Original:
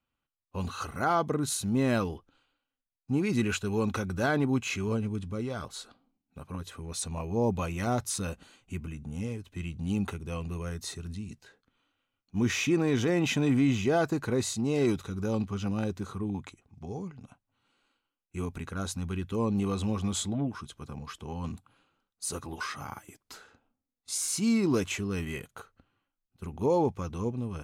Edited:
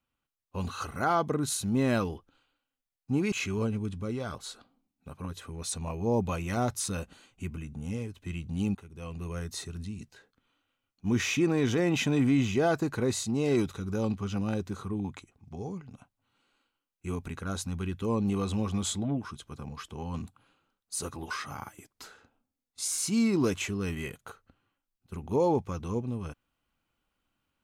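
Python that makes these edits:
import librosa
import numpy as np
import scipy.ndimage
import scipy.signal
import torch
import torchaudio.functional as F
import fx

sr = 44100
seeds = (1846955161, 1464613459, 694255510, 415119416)

y = fx.edit(x, sr, fx.cut(start_s=3.32, length_s=1.3),
    fx.fade_in_from(start_s=10.05, length_s=0.61, floor_db=-19.0), tone=tone)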